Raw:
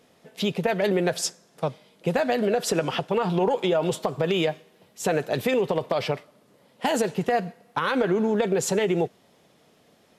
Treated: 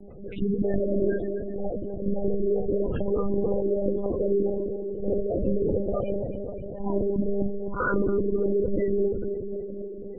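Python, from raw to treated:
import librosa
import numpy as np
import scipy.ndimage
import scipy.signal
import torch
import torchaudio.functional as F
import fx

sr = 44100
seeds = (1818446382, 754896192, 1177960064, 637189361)

y = fx.frame_reverse(x, sr, frame_ms=132.0)
y = fx.level_steps(y, sr, step_db=10)
y = fx.spec_gate(y, sr, threshold_db=-10, keep='strong')
y = fx.room_shoebox(y, sr, seeds[0], volume_m3=220.0, walls='furnished', distance_m=1.9)
y = fx.wow_flutter(y, sr, seeds[1], rate_hz=2.1, depth_cents=51.0)
y = fx.echo_feedback(y, sr, ms=266, feedback_pct=54, wet_db=-13)
y = fx.lpc_monotone(y, sr, seeds[2], pitch_hz=200.0, order=10)
y = fx.spec_gate(y, sr, threshold_db=-25, keep='strong')
y = scipy.signal.sosfilt(scipy.signal.butter(4, 2200.0, 'lowpass', fs=sr, output='sos'), y)
y = fx.band_shelf(y, sr, hz=840.0, db=-11.5, octaves=1.0)
y = fx.env_flatten(y, sr, amount_pct=50)
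y = y * librosa.db_to_amplitude(2.5)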